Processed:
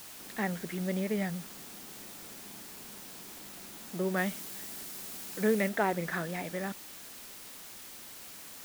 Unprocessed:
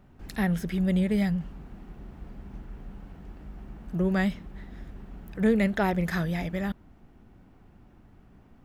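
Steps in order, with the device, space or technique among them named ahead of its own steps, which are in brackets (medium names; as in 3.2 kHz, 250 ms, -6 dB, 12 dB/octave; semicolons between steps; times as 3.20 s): wax cylinder (band-pass 280–2700 Hz; wow and flutter; white noise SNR 11 dB); 4.17–5.69 s: treble shelf 4.1 kHz +5.5 dB; trim -1.5 dB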